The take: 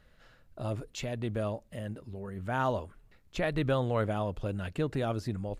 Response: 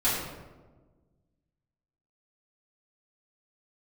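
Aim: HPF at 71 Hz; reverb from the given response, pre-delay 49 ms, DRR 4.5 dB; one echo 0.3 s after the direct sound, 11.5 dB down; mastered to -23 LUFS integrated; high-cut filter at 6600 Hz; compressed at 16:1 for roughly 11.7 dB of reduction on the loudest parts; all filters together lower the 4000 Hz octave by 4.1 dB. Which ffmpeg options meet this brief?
-filter_complex "[0:a]highpass=71,lowpass=6.6k,equalizer=f=4k:t=o:g=-5,acompressor=threshold=-36dB:ratio=16,aecho=1:1:300:0.266,asplit=2[a][b];[1:a]atrim=start_sample=2205,adelay=49[c];[b][c]afir=irnorm=-1:irlink=0,volume=-16.5dB[d];[a][d]amix=inputs=2:normalize=0,volume=17dB"

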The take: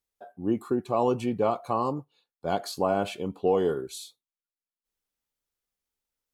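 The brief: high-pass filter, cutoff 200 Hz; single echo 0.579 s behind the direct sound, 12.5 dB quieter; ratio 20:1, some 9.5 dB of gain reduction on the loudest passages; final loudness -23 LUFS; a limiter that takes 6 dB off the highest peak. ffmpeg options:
-af "highpass=200,acompressor=threshold=-29dB:ratio=20,alimiter=level_in=1dB:limit=-24dB:level=0:latency=1,volume=-1dB,aecho=1:1:579:0.237,volume=14.5dB"

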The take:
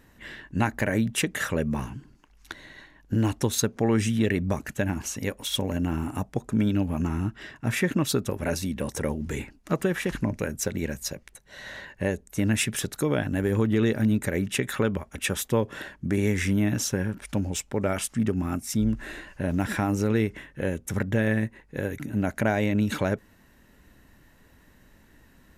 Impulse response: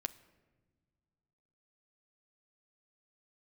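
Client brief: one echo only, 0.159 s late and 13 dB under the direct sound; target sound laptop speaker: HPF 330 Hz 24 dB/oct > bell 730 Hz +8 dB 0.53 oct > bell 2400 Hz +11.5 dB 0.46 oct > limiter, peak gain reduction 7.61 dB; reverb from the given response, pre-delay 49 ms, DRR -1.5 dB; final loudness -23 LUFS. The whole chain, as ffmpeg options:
-filter_complex "[0:a]aecho=1:1:159:0.224,asplit=2[a][b];[1:a]atrim=start_sample=2205,adelay=49[c];[b][c]afir=irnorm=-1:irlink=0,volume=2.5dB[d];[a][d]amix=inputs=2:normalize=0,highpass=f=330:w=0.5412,highpass=f=330:w=1.3066,equalizer=f=730:t=o:w=0.53:g=8,equalizer=f=2.4k:t=o:w=0.46:g=11.5,volume=2.5dB,alimiter=limit=-10.5dB:level=0:latency=1"

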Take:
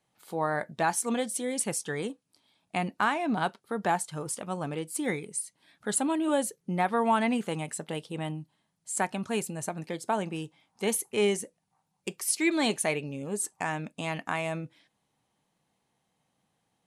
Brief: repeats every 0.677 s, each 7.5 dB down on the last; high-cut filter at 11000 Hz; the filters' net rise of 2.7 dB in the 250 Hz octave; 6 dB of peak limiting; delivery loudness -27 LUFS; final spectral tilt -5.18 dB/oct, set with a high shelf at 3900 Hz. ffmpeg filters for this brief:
-af "lowpass=11k,equalizer=f=250:t=o:g=3.5,highshelf=f=3.9k:g=-7,alimiter=limit=-19.5dB:level=0:latency=1,aecho=1:1:677|1354|2031|2708|3385:0.422|0.177|0.0744|0.0312|0.0131,volume=4.5dB"

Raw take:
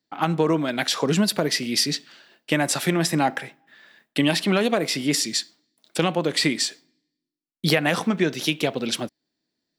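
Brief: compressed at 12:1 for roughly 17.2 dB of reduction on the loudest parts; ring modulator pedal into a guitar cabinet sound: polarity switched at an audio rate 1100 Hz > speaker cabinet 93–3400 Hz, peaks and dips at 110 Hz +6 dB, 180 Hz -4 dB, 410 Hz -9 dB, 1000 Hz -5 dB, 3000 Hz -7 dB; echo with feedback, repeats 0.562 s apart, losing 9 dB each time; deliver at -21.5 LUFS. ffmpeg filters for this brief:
-af "acompressor=threshold=-34dB:ratio=12,aecho=1:1:562|1124|1686|2248:0.355|0.124|0.0435|0.0152,aeval=exprs='val(0)*sgn(sin(2*PI*1100*n/s))':c=same,highpass=93,equalizer=f=110:t=q:w=4:g=6,equalizer=f=180:t=q:w=4:g=-4,equalizer=f=410:t=q:w=4:g=-9,equalizer=f=1k:t=q:w=4:g=-5,equalizer=f=3k:t=q:w=4:g=-7,lowpass=f=3.4k:w=0.5412,lowpass=f=3.4k:w=1.3066,volume=20dB"

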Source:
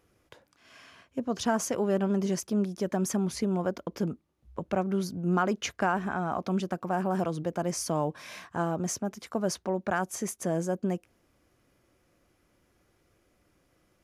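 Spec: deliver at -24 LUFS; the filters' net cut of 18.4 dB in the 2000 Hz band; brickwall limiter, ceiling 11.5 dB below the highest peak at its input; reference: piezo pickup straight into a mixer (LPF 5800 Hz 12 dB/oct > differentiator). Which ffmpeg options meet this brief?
-af "equalizer=f=2k:t=o:g=-8.5,alimiter=level_in=3.5dB:limit=-24dB:level=0:latency=1,volume=-3.5dB,lowpass=5.8k,aderivative,volume=26.5dB"

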